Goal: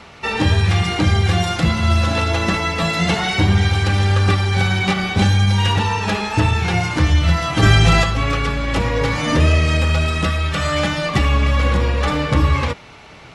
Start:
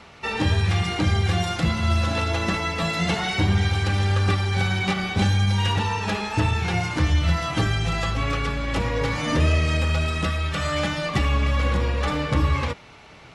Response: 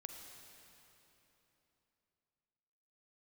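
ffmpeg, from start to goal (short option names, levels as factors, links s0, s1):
-filter_complex "[0:a]asplit=3[s0][s1][s2];[s0]afade=t=out:st=7.62:d=0.02[s3];[s1]acontrast=79,afade=t=in:st=7.62:d=0.02,afade=t=out:st=8.02:d=0.02[s4];[s2]afade=t=in:st=8.02:d=0.02[s5];[s3][s4][s5]amix=inputs=3:normalize=0,volume=1.88"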